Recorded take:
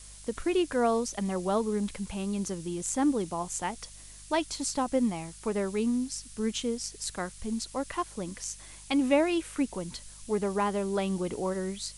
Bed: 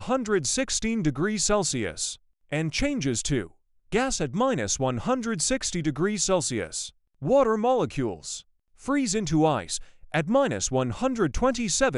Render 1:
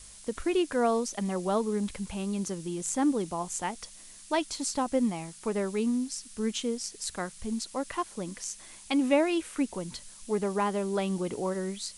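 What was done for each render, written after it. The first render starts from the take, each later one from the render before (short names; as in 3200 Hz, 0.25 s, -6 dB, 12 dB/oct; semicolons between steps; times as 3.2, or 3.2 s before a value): de-hum 50 Hz, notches 3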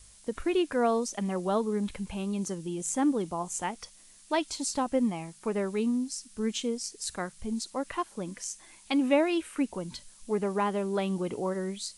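noise print and reduce 6 dB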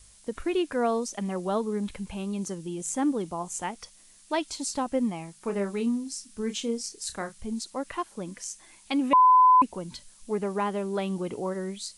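5.4–7.4 doubler 30 ms -8.5 dB; 9.13–9.62 bleep 1010 Hz -13.5 dBFS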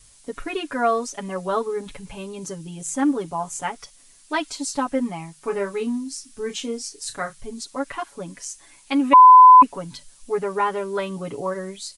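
dynamic EQ 1400 Hz, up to +7 dB, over -42 dBFS, Q 1.1; comb 7.1 ms, depth 97%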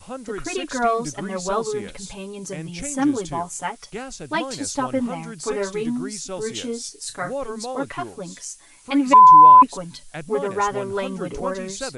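add bed -8.5 dB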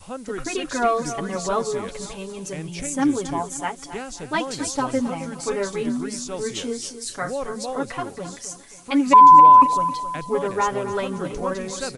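feedback echo 0.267 s, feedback 41%, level -12.5 dB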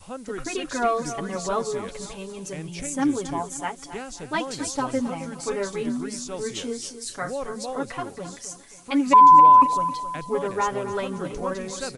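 gain -2.5 dB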